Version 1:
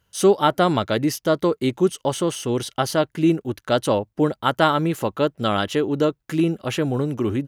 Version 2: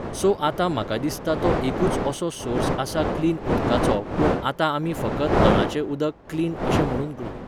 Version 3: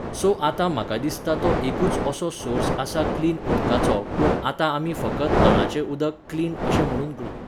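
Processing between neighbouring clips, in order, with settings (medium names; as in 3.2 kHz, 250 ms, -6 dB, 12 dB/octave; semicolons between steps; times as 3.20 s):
fade out at the end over 0.51 s; wind noise 590 Hz -21 dBFS; trim -4.5 dB
two-slope reverb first 0.33 s, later 1.6 s, from -25 dB, DRR 12.5 dB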